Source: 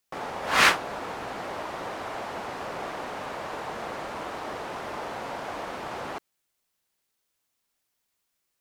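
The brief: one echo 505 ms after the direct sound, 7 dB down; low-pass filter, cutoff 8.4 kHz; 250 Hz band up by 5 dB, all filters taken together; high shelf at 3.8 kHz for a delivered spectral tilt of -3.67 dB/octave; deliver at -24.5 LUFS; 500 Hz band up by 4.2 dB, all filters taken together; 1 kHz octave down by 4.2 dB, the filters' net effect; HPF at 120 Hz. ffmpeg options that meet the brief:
-af "highpass=120,lowpass=8400,equalizer=f=250:t=o:g=5,equalizer=f=500:t=o:g=6.5,equalizer=f=1000:t=o:g=-7.5,highshelf=f=3800:g=-6.5,aecho=1:1:505:0.447,volume=2.11"

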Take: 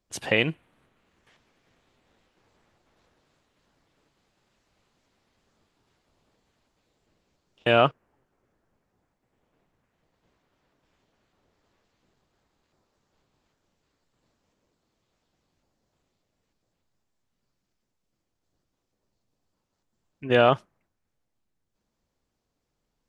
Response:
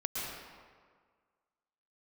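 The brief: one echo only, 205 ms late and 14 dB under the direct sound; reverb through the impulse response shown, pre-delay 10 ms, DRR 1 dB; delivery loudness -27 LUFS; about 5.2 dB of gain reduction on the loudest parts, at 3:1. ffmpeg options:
-filter_complex "[0:a]acompressor=threshold=0.1:ratio=3,aecho=1:1:205:0.2,asplit=2[s0][s1];[1:a]atrim=start_sample=2205,adelay=10[s2];[s1][s2]afir=irnorm=-1:irlink=0,volume=0.531[s3];[s0][s3]amix=inputs=2:normalize=0"

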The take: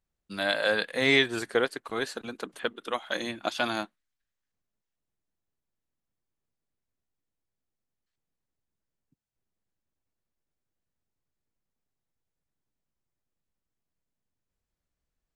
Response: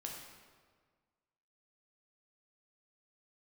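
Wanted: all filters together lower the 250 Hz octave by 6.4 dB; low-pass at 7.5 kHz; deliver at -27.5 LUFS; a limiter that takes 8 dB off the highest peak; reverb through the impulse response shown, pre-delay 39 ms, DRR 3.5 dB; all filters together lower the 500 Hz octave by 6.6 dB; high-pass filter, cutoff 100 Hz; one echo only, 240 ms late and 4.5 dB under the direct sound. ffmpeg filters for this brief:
-filter_complex "[0:a]highpass=100,lowpass=7500,equalizer=f=250:t=o:g=-5.5,equalizer=f=500:t=o:g=-6.5,alimiter=limit=0.119:level=0:latency=1,aecho=1:1:240:0.596,asplit=2[s0][s1];[1:a]atrim=start_sample=2205,adelay=39[s2];[s1][s2]afir=irnorm=-1:irlink=0,volume=0.794[s3];[s0][s3]amix=inputs=2:normalize=0,volume=1.58"

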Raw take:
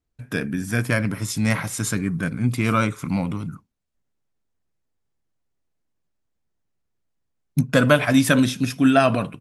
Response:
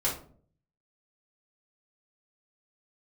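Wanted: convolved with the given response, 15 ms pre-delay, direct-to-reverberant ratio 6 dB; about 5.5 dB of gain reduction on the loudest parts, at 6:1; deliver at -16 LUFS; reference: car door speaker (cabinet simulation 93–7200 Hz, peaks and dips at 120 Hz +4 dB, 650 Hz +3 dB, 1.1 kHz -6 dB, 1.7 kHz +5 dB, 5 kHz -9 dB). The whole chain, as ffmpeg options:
-filter_complex "[0:a]acompressor=threshold=0.141:ratio=6,asplit=2[s0][s1];[1:a]atrim=start_sample=2205,adelay=15[s2];[s1][s2]afir=irnorm=-1:irlink=0,volume=0.2[s3];[s0][s3]amix=inputs=2:normalize=0,highpass=93,equalizer=f=120:t=q:w=4:g=4,equalizer=f=650:t=q:w=4:g=3,equalizer=f=1100:t=q:w=4:g=-6,equalizer=f=1700:t=q:w=4:g=5,equalizer=f=5000:t=q:w=4:g=-9,lowpass=f=7200:w=0.5412,lowpass=f=7200:w=1.3066,volume=2"

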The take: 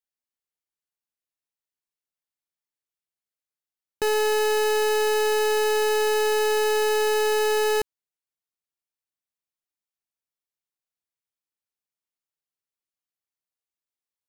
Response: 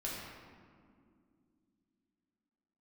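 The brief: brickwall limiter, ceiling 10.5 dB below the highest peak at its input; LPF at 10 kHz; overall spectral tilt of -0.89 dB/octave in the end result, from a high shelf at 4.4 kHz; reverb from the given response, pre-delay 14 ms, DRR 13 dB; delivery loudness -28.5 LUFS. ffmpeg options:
-filter_complex "[0:a]lowpass=10000,highshelf=f=4400:g=-4.5,alimiter=level_in=2.51:limit=0.0631:level=0:latency=1,volume=0.398,asplit=2[s0][s1];[1:a]atrim=start_sample=2205,adelay=14[s2];[s1][s2]afir=irnorm=-1:irlink=0,volume=0.178[s3];[s0][s3]amix=inputs=2:normalize=0,volume=1.68"

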